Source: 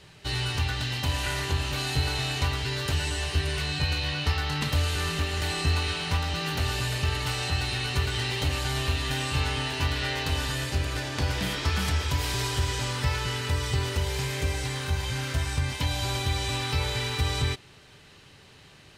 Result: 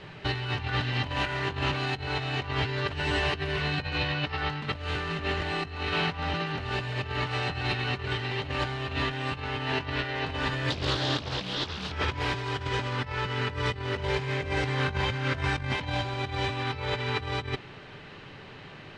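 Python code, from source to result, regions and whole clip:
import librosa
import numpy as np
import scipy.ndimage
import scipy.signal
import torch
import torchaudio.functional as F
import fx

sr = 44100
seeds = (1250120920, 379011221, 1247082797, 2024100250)

y = fx.chain(x, sr, fx.high_shelf_res(hz=3000.0, db=7.0, q=3.0),
    fx.doppler_dist(depth_ms=0.85), at=(10.7, 11.92))
y = scipy.signal.sosfilt(scipy.signal.butter(2, 2500.0, 'lowpass', fs=sr, output='sos'), y)
y = fx.peak_eq(y, sr, hz=62.0, db=-13.0, octaves=0.88)
y = fx.over_compress(y, sr, threshold_db=-35.0, ratio=-0.5)
y = y * 10.0 ** (5.5 / 20.0)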